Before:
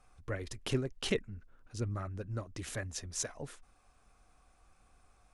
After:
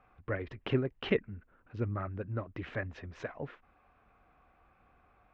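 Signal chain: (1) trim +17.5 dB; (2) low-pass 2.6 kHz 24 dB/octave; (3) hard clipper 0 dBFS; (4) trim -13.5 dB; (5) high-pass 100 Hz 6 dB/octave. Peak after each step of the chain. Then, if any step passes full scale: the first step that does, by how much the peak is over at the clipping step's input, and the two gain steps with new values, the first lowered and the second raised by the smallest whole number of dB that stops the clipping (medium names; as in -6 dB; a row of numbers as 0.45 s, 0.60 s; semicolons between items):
-1.5 dBFS, -1.5 dBFS, -1.5 dBFS, -15.0 dBFS, -13.5 dBFS; nothing clips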